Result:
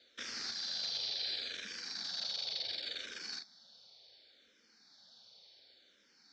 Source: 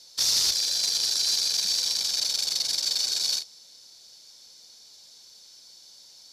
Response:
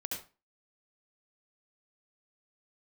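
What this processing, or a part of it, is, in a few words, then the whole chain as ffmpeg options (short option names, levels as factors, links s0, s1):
barber-pole phaser into a guitar amplifier: -filter_complex "[0:a]asplit=2[s0][s1];[s1]afreqshift=-0.69[s2];[s0][s2]amix=inputs=2:normalize=1,asoftclip=type=tanh:threshold=0.0631,highpass=110,equalizer=f=140:t=q:w=4:g=-7,equalizer=f=230:t=q:w=4:g=4,equalizer=f=360:t=q:w=4:g=-3,equalizer=f=990:t=q:w=4:g=-9,equalizer=f=1600:t=q:w=4:g=4,equalizer=f=2700:t=q:w=4:g=-4,lowpass=f=3700:w=0.5412,lowpass=f=3700:w=1.3066"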